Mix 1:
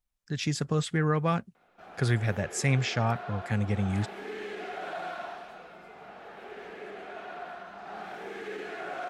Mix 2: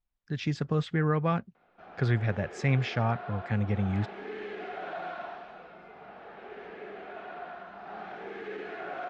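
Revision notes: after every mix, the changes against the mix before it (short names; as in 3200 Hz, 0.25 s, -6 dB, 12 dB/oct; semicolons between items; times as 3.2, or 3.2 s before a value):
master: add air absorption 200 m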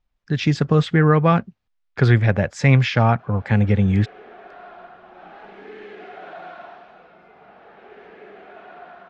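speech +11.5 dB; background: entry +1.40 s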